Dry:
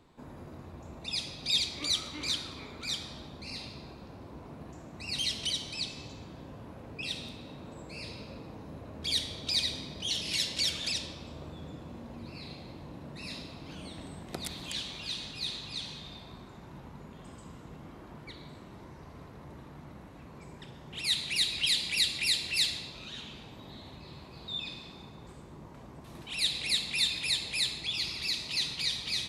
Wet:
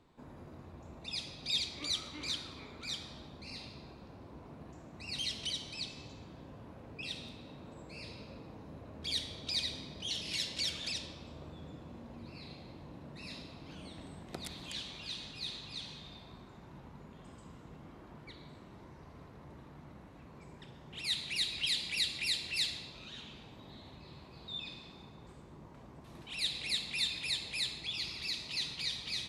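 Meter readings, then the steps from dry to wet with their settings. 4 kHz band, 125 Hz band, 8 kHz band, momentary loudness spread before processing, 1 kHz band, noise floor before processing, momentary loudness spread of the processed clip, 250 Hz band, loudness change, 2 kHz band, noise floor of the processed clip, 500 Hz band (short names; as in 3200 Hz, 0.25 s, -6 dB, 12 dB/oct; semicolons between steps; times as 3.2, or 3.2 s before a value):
-5.5 dB, -4.5 dB, -7.0 dB, 21 LU, -4.5 dB, -50 dBFS, 20 LU, -4.5 dB, -5.5 dB, -5.0 dB, -54 dBFS, -4.5 dB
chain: high shelf 9300 Hz -7 dB; gain -4.5 dB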